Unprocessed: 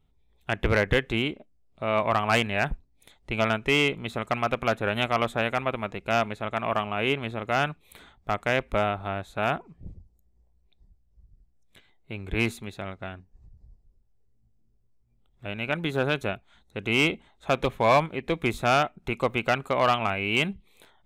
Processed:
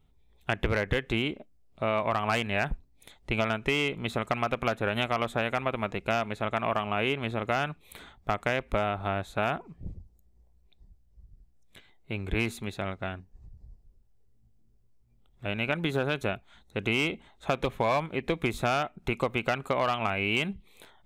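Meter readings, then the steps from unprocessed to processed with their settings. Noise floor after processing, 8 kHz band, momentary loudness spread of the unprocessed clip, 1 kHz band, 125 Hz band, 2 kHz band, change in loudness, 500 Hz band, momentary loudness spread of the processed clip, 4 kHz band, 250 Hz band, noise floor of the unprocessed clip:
−62 dBFS, −3.5 dB, 14 LU, −3.5 dB, −2.0 dB, −3.5 dB, −3.5 dB, −3.0 dB, 10 LU, −3.5 dB, −2.5 dB, −65 dBFS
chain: downward compressor, threshold −26 dBFS, peak gain reduction 9.5 dB
level +2.5 dB

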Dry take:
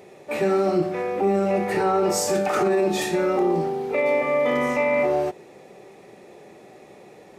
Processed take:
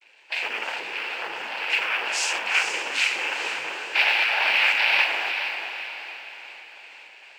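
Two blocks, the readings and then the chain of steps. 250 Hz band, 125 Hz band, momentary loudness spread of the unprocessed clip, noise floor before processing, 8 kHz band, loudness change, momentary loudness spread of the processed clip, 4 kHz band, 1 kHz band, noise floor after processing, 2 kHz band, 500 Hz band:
−24.5 dB, below −30 dB, 4 LU, −48 dBFS, −1.0 dB, −0.5 dB, 17 LU, +12.5 dB, −4.5 dB, −49 dBFS, +9.5 dB, −18.5 dB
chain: vocoder with an arpeggio as carrier major triad, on A2, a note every 157 ms
automatic gain control gain up to 5 dB
brickwall limiter −12.5 dBFS, peak gain reduction 7.5 dB
cochlear-implant simulation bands 8
harmonic generator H 2 −9 dB, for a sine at −6.5 dBFS
pitch vibrato 1.4 Hz 14 cents
high-pass with resonance 2,500 Hz, resonance Q 3.1
noise that follows the level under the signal 34 dB
feedback delay with all-pass diffusion 454 ms, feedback 47%, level −7 dB
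level +8.5 dB

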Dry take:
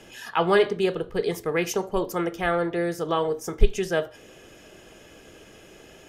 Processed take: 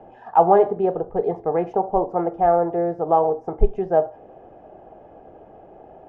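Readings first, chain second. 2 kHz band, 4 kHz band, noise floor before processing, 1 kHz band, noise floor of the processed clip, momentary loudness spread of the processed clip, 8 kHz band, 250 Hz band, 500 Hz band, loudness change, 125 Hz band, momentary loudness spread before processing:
−12.0 dB, below −20 dB, −50 dBFS, +10.0 dB, −47 dBFS, 8 LU, below −35 dB, +1.5 dB, +5.0 dB, +4.5 dB, +0.5 dB, 7 LU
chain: low-pass with resonance 770 Hz, resonance Q 6

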